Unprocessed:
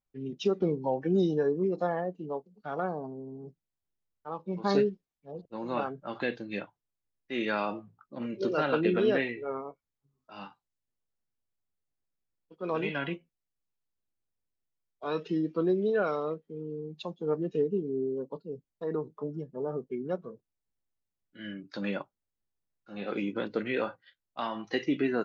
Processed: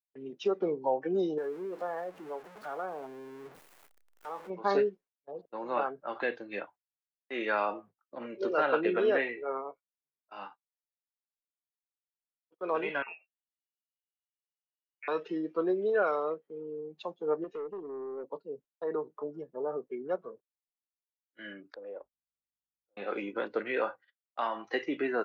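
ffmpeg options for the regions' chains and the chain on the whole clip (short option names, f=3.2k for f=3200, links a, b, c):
-filter_complex "[0:a]asettb=1/sr,asplit=3[a][b][c];[a]atrim=end=1.384[d];[b]atrim=start=1.38:end=4.5,asetpts=PTS-STARTPTS,afade=t=in:d=0.004:c=qsin,afade=t=out:st=3.116:d=0.004:c=qsin,aeval=exprs='val(0)+0.5*0.00891*sgn(val(0))':c=same,acompressor=threshold=-45dB:ratio=1.5:attack=3.2:release=140:knee=1:detection=peak[e];[c]atrim=start=4.496[f];[d][e]acrossfade=d=0.004:c1=hsin:c2=qsin[g];[g][f]acrossfade=d=0.004:c1=qsin:c2=hsin,asettb=1/sr,asplit=3[h][i][j];[h]atrim=end=13.024[k];[i]atrim=start=13.02:end=15.08,asetpts=PTS-STARTPTS,afade=t=in:d=0.004:c=qsin,afade=t=out:st=2.056:d=0.004:c=qsin,acompressor=threshold=-43dB:ratio=2.5:attack=3.2:release=140:knee=1:detection=peak,lowpass=f=2.5k:t=q:w=0.5098,lowpass=f=2.5k:t=q:w=0.6013,lowpass=f=2.5k:t=q:w=0.9,lowpass=f=2.5k:t=q:w=2.563,afreqshift=-2900[l];[j]atrim=start=15.076[m];[k][l]acrossfade=d=0.004:c1=hsin:c2=qsin[n];[n][m]acrossfade=d=0.004:c1=qsin:c2=hsin,asettb=1/sr,asplit=3[o][p][q];[o]atrim=end=17.444[r];[p]atrim=start=17.44:end=18.24,asetpts=PTS-STARTPTS,afade=t=in:d=0.004:c=qsin,afade=t=out:st=0.796:d=0.004:c=qsin,highpass=f=250:p=1,acompressor=threshold=-31dB:ratio=3:attack=3.2:release=140:knee=1:detection=peak,aeval=exprs='(tanh(39.8*val(0)+0.2)-tanh(0.2))/39.8':c=same[s];[q]atrim=start=18.236[t];[r][s]acrossfade=d=0.004:c1=hsin:c2=qsin[u];[u][t]acrossfade=d=0.004:c1=qsin:c2=hsin,asettb=1/sr,asplit=3[v][w][x];[v]atrim=end=21.744[y];[w]atrim=start=21.74:end=22.97,asetpts=PTS-STARTPTS,afade=t=in:d=0.004:c=qsin,afade=t=out:st=1.226:d=0.004:c=qsin,aeval=exprs='if(lt(val(0),0),0.447*val(0),val(0))':c=same,bandpass=f=480:t=q:w=4.7,aeval=exprs='val(0)+0.000316*(sin(2*PI*50*n/s)+sin(2*PI*2*50*n/s)/2+sin(2*PI*3*50*n/s)/3+sin(2*PI*4*50*n/s)/4+sin(2*PI*5*50*n/s)/5)':c=same[z];[x]atrim=start=22.966[aa];[y][z]acrossfade=d=0.004:c1=hsin:c2=qsin[ab];[ab][aa]acrossfade=d=0.004:c1=qsin:c2=hsin,highshelf=f=3.2k:g=10.5,agate=range=-24dB:threshold=-50dB:ratio=16:detection=peak,acrossover=split=350 2100:gain=0.112 1 0.126[ac][ad][ae];[ac][ad][ae]amix=inputs=3:normalize=0,volume=2dB"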